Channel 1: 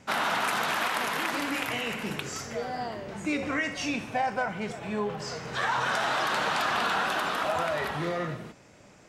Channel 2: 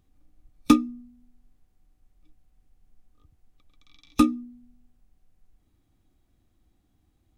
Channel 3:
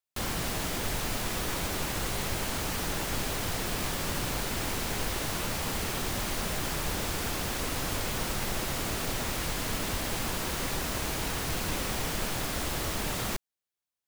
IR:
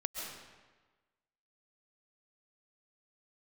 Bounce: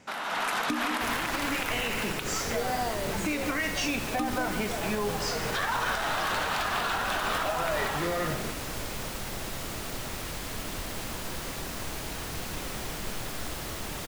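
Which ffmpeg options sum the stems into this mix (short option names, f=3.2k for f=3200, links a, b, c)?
-filter_complex "[0:a]volume=0dB[a];[1:a]volume=-6.5dB,asplit=2[b][c];[c]volume=-16dB[d];[2:a]adelay=850,volume=-17.5dB,asplit=2[e][f];[f]volume=-4.5dB[g];[a][b]amix=inputs=2:normalize=0,lowshelf=f=140:g=-10,acompressor=threshold=-40dB:ratio=2,volume=0dB[h];[3:a]atrim=start_sample=2205[i];[d][g]amix=inputs=2:normalize=0[j];[j][i]afir=irnorm=-1:irlink=0[k];[e][h][k]amix=inputs=3:normalize=0,dynaudnorm=f=240:g=3:m=9.5dB,alimiter=limit=-19dB:level=0:latency=1:release=113"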